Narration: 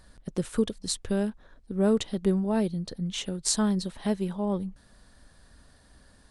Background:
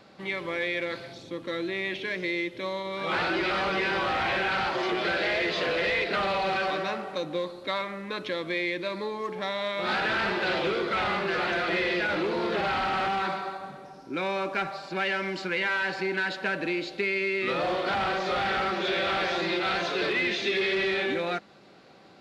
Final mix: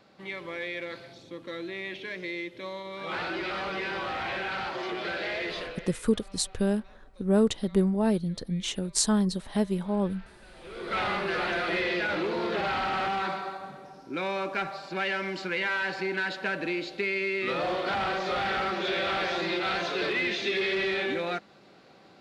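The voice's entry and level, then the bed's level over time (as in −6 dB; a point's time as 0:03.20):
5.50 s, +1.0 dB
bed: 0:05.56 −5.5 dB
0:06.04 −27 dB
0:10.52 −27 dB
0:10.95 −1.5 dB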